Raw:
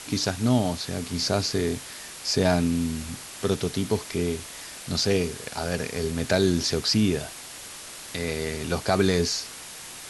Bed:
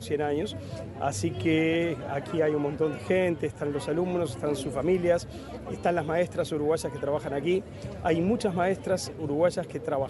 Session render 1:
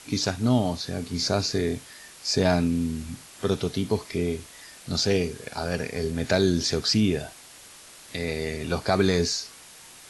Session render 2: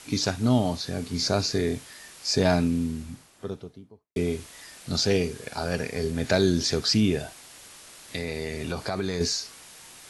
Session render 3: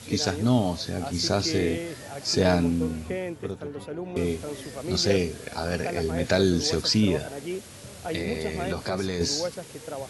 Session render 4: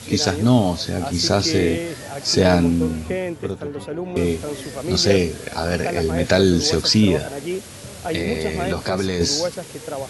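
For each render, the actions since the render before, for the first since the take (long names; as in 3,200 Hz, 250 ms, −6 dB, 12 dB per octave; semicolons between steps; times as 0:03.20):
noise reduction from a noise print 7 dB
0:02.52–0:04.16: fade out and dull; 0:08.18–0:09.21: downward compressor 3 to 1, threshold −26 dBFS
mix in bed −7 dB
level +6.5 dB; brickwall limiter −3 dBFS, peak gain reduction 1.5 dB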